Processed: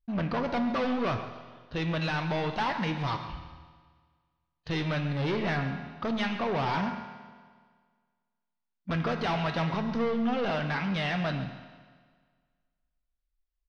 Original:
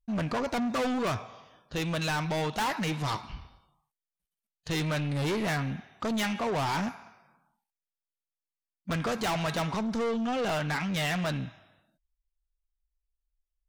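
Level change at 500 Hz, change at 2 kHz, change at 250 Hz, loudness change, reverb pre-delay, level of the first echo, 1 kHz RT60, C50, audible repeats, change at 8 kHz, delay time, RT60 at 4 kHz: 0.0 dB, 0.0 dB, +0.5 dB, 0.0 dB, 6 ms, −14.5 dB, 1.7 s, 8.5 dB, 1, below −10 dB, 136 ms, 1.6 s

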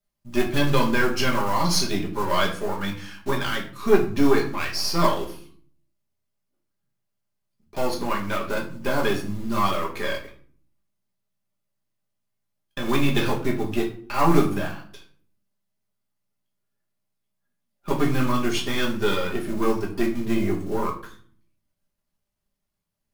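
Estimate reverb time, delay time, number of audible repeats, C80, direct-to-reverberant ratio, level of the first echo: 0.55 s, no echo audible, no echo audible, 14.0 dB, −2.0 dB, no echo audible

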